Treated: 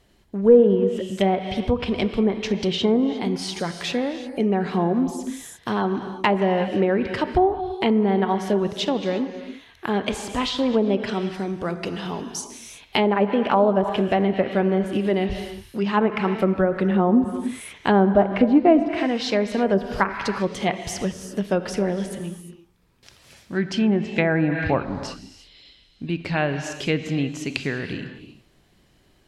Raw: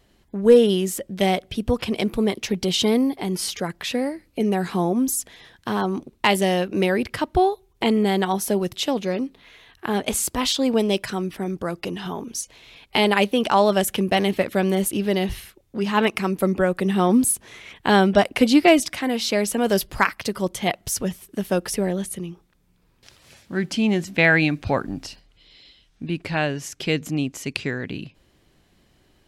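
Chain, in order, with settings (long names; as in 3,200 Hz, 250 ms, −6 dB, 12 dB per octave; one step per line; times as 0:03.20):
reverb whose tail is shaped and stops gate 380 ms flat, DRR 8 dB
treble cut that deepens with the level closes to 940 Hz, closed at −13.5 dBFS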